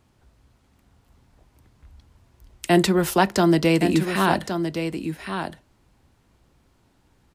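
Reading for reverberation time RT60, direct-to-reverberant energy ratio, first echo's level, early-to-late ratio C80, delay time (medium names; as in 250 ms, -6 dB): no reverb, no reverb, -8.0 dB, no reverb, 1117 ms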